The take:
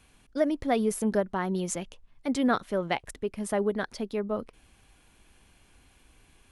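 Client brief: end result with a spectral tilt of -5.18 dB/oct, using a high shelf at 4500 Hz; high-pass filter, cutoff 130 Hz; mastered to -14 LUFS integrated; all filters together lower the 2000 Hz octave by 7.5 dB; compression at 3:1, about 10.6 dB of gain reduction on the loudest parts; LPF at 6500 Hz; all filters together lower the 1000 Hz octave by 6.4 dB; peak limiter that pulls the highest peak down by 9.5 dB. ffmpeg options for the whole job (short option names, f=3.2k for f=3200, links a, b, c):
-af "highpass=130,lowpass=6.5k,equalizer=f=1k:t=o:g=-8.5,equalizer=f=2k:t=o:g=-7,highshelf=f=4.5k:g=4,acompressor=threshold=-37dB:ratio=3,volume=28dB,alimiter=limit=-4dB:level=0:latency=1"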